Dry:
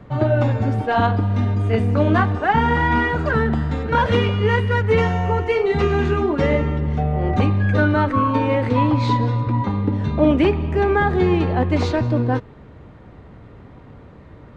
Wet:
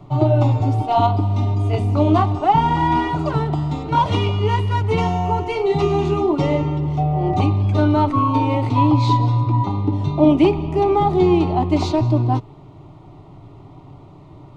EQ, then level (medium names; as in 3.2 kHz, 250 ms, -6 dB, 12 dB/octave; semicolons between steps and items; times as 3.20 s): static phaser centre 330 Hz, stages 8; +4.0 dB